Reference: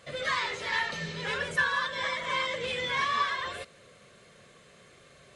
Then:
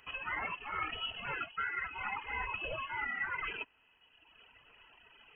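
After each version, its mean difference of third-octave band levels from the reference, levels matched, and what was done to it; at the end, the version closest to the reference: 11.0 dB: companding laws mixed up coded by A; reverb removal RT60 1.4 s; reverse; compression 6:1, threshold -42 dBFS, peak gain reduction 18.5 dB; reverse; frequency inversion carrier 3.1 kHz; trim +7 dB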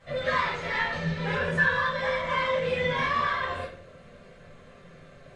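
5.0 dB: low-pass 1.8 kHz 6 dB/octave; bass shelf 68 Hz +7 dB; flange 0.91 Hz, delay 0.5 ms, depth 6.4 ms, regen +74%; simulated room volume 62 m³, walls mixed, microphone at 2 m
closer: second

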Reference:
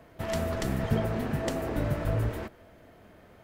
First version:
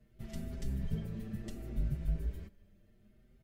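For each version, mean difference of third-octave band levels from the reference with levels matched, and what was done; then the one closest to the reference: 5.5 dB: amplifier tone stack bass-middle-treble 10-0-1; comb 5.1 ms, depth 50%; endless flanger 6.2 ms +0.67 Hz; trim +8.5 dB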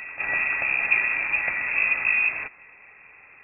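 16.0 dB: peaking EQ 370 Hz -12.5 dB 0.33 oct; reverse echo 440 ms -11.5 dB; frequency inversion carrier 2.6 kHz; trim +5 dB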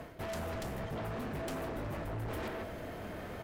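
8.0 dB: speakerphone echo 160 ms, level -12 dB; reverse; compression 6:1, threshold -44 dBFS, peak gain reduction 21 dB; reverse; sine folder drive 10 dB, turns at -33 dBFS; trim -2 dB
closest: first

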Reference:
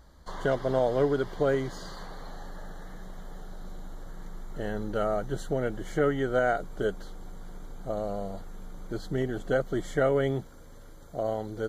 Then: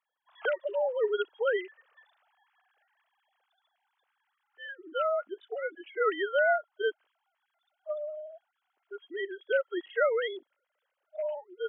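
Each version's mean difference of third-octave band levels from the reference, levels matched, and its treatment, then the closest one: 19.0 dB: formants replaced by sine waves; spectral noise reduction 18 dB; brick-wall FIR high-pass 220 Hz; tilt EQ +4 dB/octave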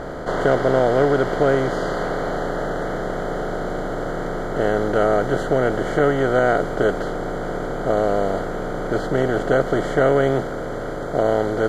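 6.5 dB: spectral levelling over time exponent 0.4; treble shelf 4.4 kHz -6.5 dB; tape noise reduction on one side only decoder only; trim +4.5 dB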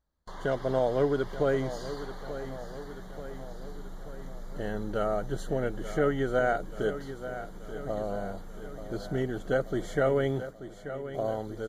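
3.0 dB: gate with hold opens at -34 dBFS; band-stop 7.8 kHz, Q 21; level rider gain up to 4 dB; on a send: feedback delay 884 ms, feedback 58%, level -12 dB; on the sum: trim -5 dB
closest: third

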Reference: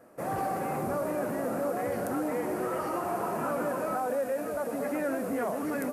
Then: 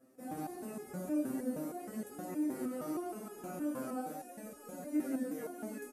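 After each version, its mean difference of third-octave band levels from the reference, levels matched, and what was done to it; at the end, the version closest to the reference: 6.5 dB: graphic EQ 125/250/500/1000/2000/8000 Hz -6/+8/-4/-9/-5/+3 dB; on a send: delay 171 ms -5 dB; on the sum: resonator arpeggio 6.4 Hz 130–420 Hz; trim +3.5 dB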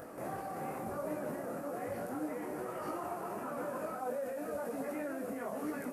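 2.0 dB: upward compressor, threshold -34 dBFS; peak limiter -28 dBFS, peak gain reduction 10 dB; detune thickener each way 36 cents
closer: second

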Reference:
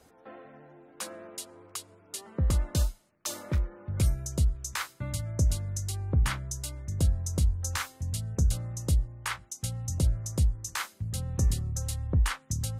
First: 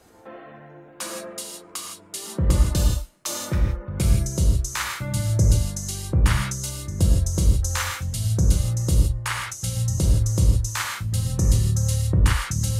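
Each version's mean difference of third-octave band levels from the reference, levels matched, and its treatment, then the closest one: 6.5 dB: gated-style reverb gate 190 ms flat, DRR -0.5 dB; trim +4.5 dB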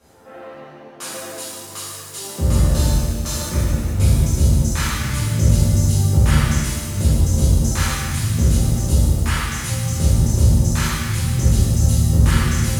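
10.5 dB: pitch-shifted reverb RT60 1.9 s, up +7 st, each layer -8 dB, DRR -11.5 dB; trim -1 dB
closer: first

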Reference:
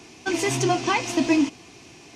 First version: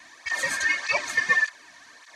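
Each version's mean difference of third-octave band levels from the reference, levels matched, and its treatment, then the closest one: 8.0 dB: four frequency bands reordered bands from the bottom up 2143; cancelling through-zero flanger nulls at 1.7 Hz, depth 2.6 ms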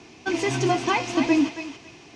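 2.5 dB: distance through air 84 m; on a send: thinning echo 275 ms, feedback 25%, high-pass 900 Hz, level -7 dB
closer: second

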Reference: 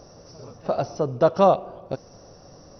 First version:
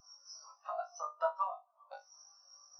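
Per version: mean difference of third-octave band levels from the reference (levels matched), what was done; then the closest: 11.0 dB: high-pass 1 kHz 24 dB/octave; compression 10:1, threshold -45 dBFS, peak gain reduction 23.5 dB; flutter echo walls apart 3.4 m, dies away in 0.47 s; spectral contrast expander 2.5:1; trim +10 dB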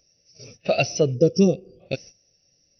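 8.0 dB: gate -43 dBFS, range -12 dB; time-frequency box 1.14–1.81 s, 530–4600 Hz -18 dB; resonant high shelf 1.6 kHz +14 dB, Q 3; spectral contrast expander 1.5:1; trim +4 dB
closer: second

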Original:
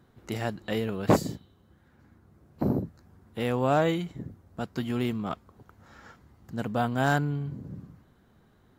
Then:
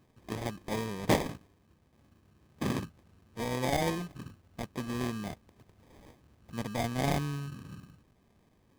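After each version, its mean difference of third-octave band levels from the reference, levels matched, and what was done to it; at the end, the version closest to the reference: 6.5 dB: high-order bell 6.1 kHz +12.5 dB; sample-rate reducer 1.4 kHz, jitter 0%; loudspeaker Doppler distortion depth 0.24 ms; trim -5.5 dB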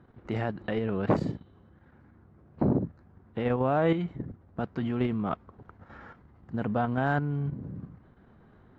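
4.5 dB: low-pass 2.1 kHz 12 dB/octave; level held to a coarse grid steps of 9 dB; peak limiter -21.5 dBFS, peak gain reduction 10 dB; trim +6.5 dB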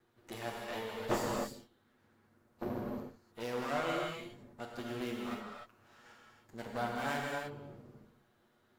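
9.5 dB: comb filter that takes the minimum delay 8.4 ms; bass shelf 210 Hz -11.5 dB; gated-style reverb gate 330 ms flat, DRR -1.5 dB; trim -8 dB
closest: second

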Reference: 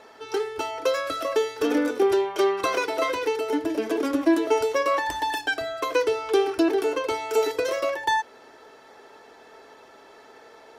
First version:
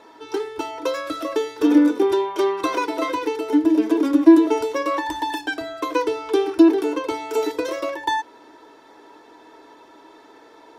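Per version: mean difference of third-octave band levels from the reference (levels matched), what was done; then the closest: 4.5 dB: small resonant body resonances 310/960/3600 Hz, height 16 dB, ringing for 90 ms; trim -1.5 dB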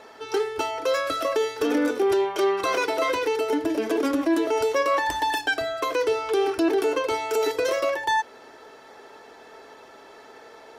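1.5 dB: peak limiter -17 dBFS, peak gain reduction 7.5 dB; trim +2.5 dB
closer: second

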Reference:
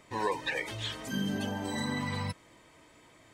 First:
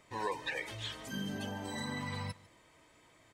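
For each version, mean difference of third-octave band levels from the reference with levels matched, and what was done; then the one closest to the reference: 1.0 dB: peaking EQ 260 Hz -3 dB 1.4 oct; delay 150 ms -21.5 dB; trim -4.5 dB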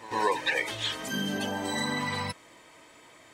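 3.0 dB: bass shelf 220 Hz -12 dB; pre-echo 115 ms -15.5 dB; trim +6 dB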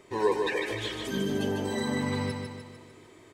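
4.5 dB: peaking EQ 390 Hz +14 dB 0.4 oct; feedback delay 150 ms, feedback 52%, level -5 dB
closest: first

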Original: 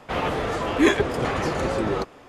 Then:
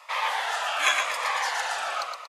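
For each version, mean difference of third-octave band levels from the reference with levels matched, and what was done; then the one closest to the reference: 14.5 dB: inverse Chebyshev high-pass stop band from 390 Hz, stop band 40 dB; feedback delay 117 ms, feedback 41%, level -5 dB; Shepard-style phaser falling 0.89 Hz; trim +4.5 dB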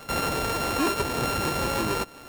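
7.5 dB: sorted samples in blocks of 32 samples; compression 1.5:1, threshold -36 dBFS, peak gain reduction 8.5 dB; hard clipper -24.5 dBFS, distortion -13 dB; trim +4 dB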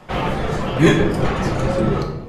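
4.0 dB: octave divider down 1 oct, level +3 dB; reverb removal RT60 0.67 s; simulated room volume 370 m³, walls mixed, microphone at 1 m; trim +1.5 dB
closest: third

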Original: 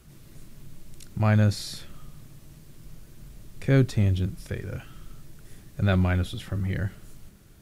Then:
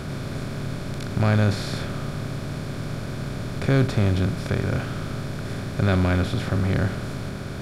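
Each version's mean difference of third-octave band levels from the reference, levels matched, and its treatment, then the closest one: 12.0 dB: spectral levelling over time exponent 0.4; treble shelf 6.9 kHz -6.5 dB; trim -1 dB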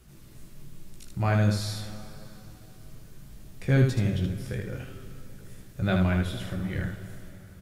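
4.0 dB: on a send: early reflections 16 ms -5 dB, 77 ms -4.5 dB; on the sum: plate-style reverb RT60 3.8 s, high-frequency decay 0.8×, DRR 11 dB; trim -3 dB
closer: second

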